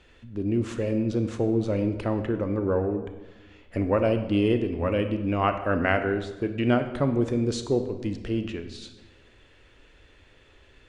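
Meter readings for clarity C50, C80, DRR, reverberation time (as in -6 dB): 9.5 dB, 11.5 dB, 8.0 dB, 1.2 s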